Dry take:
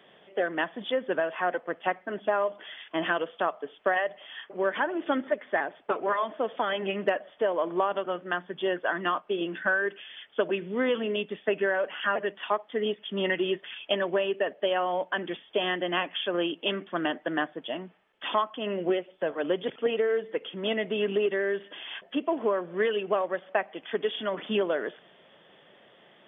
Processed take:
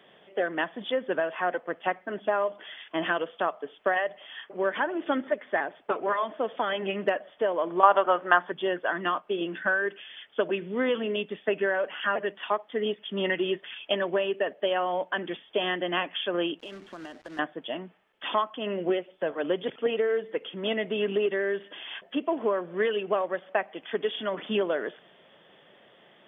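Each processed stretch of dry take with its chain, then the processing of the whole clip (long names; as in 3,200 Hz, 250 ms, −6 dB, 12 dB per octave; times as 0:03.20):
0:07.83–0:08.52: high-pass filter 260 Hz 6 dB per octave + parametric band 1,000 Hz +13 dB 2 octaves + upward compression, threshold −31 dBFS
0:16.59–0:17.39: log-companded quantiser 4 bits + high-frequency loss of the air 91 metres + downward compressor 5 to 1, threshold −39 dBFS
whole clip: no processing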